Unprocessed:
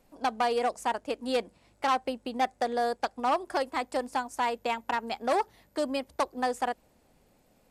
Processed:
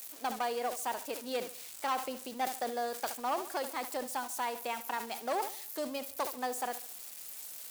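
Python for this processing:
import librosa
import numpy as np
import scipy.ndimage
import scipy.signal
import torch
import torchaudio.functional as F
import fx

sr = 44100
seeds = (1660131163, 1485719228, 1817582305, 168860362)

p1 = x + 0.5 * 10.0 ** (-29.5 / 20.0) * np.diff(np.sign(x), prepend=np.sign(x[:1]))
p2 = fx.low_shelf(p1, sr, hz=150.0, db=-11.0)
p3 = p2 + fx.echo_feedback(p2, sr, ms=71, feedback_pct=49, wet_db=-16.0, dry=0)
p4 = fx.sustainer(p3, sr, db_per_s=110.0)
y = F.gain(torch.from_numpy(p4), -6.5).numpy()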